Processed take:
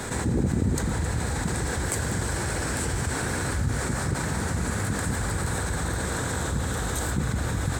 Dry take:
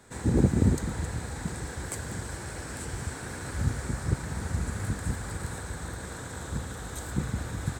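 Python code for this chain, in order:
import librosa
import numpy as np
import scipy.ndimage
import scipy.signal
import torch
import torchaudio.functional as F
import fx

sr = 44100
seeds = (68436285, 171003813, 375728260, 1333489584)

y = fx.low_shelf(x, sr, hz=75.0, db=-10.5, at=(3.77, 5.18))
y = fx.env_flatten(y, sr, amount_pct=70)
y = y * librosa.db_to_amplitude(-4.5)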